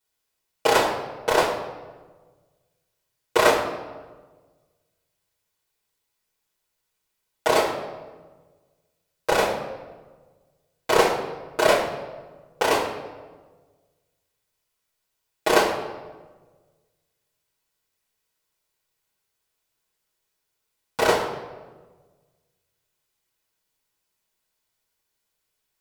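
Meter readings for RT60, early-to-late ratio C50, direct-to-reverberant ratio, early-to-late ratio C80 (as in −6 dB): 1.3 s, 6.0 dB, −8.0 dB, 8.0 dB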